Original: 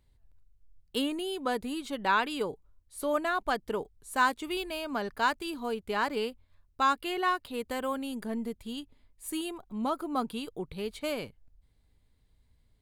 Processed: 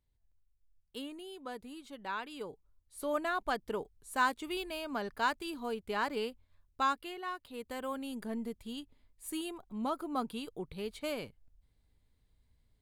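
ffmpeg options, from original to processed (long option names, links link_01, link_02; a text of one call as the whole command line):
ffmpeg -i in.wav -af "volume=5dB,afade=type=in:start_time=2.26:duration=0.97:silence=0.375837,afade=type=out:start_time=6.81:duration=0.39:silence=0.354813,afade=type=in:start_time=7.2:duration=0.98:silence=0.354813" out.wav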